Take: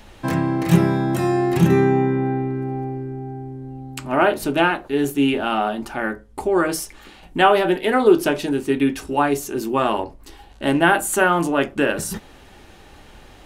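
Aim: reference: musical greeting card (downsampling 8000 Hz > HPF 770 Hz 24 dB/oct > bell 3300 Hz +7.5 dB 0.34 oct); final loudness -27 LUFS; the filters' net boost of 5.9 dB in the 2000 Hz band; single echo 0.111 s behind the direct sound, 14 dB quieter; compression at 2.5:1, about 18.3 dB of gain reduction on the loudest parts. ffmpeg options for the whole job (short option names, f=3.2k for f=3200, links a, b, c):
-af "equalizer=f=2k:t=o:g=8,acompressor=threshold=-37dB:ratio=2.5,aecho=1:1:111:0.2,aresample=8000,aresample=44100,highpass=f=770:w=0.5412,highpass=f=770:w=1.3066,equalizer=f=3.3k:t=o:w=0.34:g=7.5,volume=10dB"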